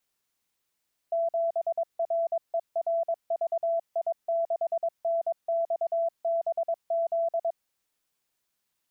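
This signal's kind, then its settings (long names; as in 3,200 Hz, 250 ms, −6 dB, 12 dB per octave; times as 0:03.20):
Morse code "7RERVI6NXBZ" 22 words per minute 669 Hz −23.5 dBFS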